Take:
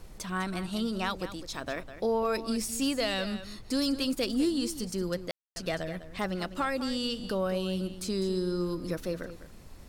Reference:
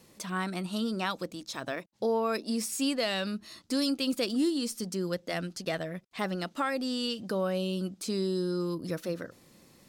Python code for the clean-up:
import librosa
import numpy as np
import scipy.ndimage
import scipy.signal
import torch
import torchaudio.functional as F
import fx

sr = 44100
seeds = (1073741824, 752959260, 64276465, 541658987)

y = fx.fix_declip(x, sr, threshold_db=-20.5)
y = fx.fix_ambience(y, sr, seeds[0], print_start_s=9.37, print_end_s=9.87, start_s=5.31, end_s=5.56)
y = fx.noise_reduce(y, sr, print_start_s=9.37, print_end_s=9.87, reduce_db=13.0)
y = fx.fix_echo_inverse(y, sr, delay_ms=202, level_db=-12.5)